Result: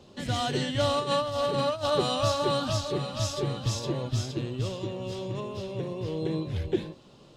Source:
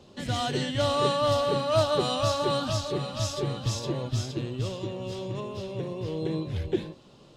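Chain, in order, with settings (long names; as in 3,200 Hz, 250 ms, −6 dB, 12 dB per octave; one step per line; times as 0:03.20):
0:00.99–0:01.90: compressor whose output falls as the input rises −27 dBFS, ratio −0.5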